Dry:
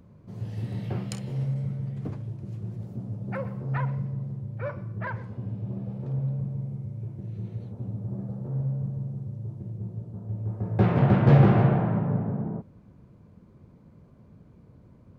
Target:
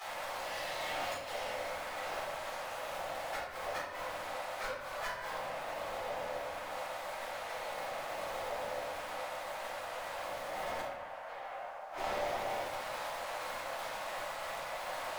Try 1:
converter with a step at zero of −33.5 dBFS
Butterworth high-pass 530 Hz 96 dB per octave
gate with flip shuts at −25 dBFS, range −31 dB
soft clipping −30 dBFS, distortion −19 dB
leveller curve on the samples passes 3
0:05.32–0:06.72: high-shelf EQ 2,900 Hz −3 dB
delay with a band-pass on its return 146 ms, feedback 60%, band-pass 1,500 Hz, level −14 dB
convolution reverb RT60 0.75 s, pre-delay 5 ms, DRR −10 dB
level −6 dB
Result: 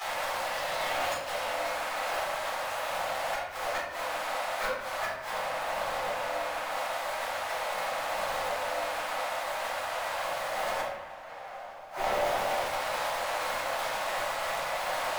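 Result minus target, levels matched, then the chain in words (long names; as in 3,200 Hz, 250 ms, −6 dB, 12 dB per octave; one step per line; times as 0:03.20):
soft clipping: distortion −12 dB; converter with a step at zero: distortion +7 dB
converter with a step at zero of −41.5 dBFS
Butterworth high-pass 530 Hz 96 dB per octave
gate with flip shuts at −25 dBFS, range −31 dB
soft clipping −39.5 dBFS, distortion −8 dB
leveller curve on the samples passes 3
0:05.32–0:06.72: high-shelf EQ 2,900 Hz −3 dB
delay with a band-pass on its return 146 ms, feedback 60%, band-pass 1,500 Hz, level −14 dB
convolution reverb RT60 0.75 s, pre-delay 5 ms, DRR −10 dB
level −6 dB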